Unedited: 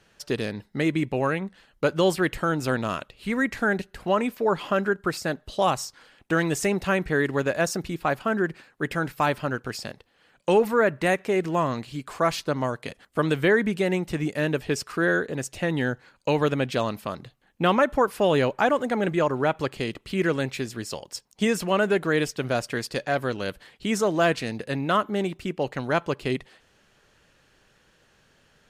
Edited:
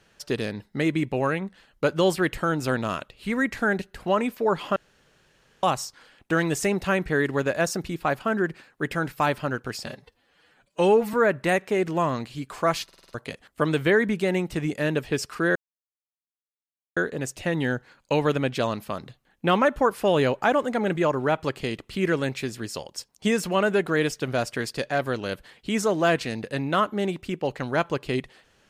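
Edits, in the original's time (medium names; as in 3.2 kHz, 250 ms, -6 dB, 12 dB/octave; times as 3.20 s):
4.76–5.63 s: room tone
9.86–10.71 s: stretch 1.5×
12.42 s: stutter in place 0.05 s, 6 plays
15.13 s: insert silence 1.41 s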